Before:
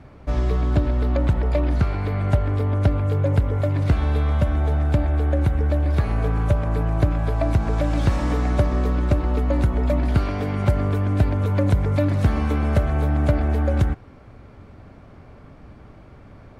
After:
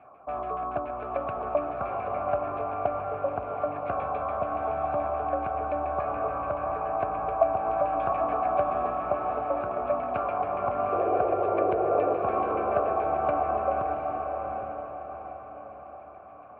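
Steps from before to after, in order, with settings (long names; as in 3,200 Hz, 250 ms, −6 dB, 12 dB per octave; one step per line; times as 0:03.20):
auto-filter low-pass saw down 7 Hz 950–2,200 Hz
formant filter a
sound drawn into the spectrogram noise, 0:10.92–0:12.17, 330–780 Hz −33 dBFS
on a send: feedback delay with all-pass diffusion 766 ms, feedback 43%, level −4 dB
on the sum: level +6 dB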